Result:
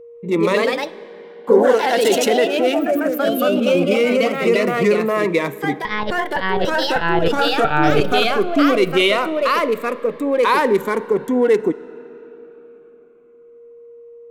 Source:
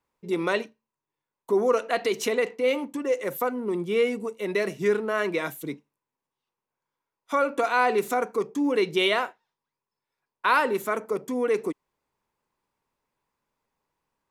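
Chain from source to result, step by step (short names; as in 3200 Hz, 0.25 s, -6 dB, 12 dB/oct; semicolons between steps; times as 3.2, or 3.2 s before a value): Wiener smoothing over 9 samples; 2.79–3.75 fixed phaser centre 570 Hz, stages 8; 7.64–8.12 monotone LPC vocoder at 8 kHz 150 Hz; on a send at -19.5 dB: reverb RT60 4.2 s, pre-delay 10 ms; on the sum: echoes that change speed 0.148 s, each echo +2 st, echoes 3; whine 470 Hz -48 dBFS; in parallel at +2.5 dB: limiter -17.5 dBFS, peak gain reduction 12 dB; on the sum: cascading phaser falling 0.21 Hz; gain +4 dB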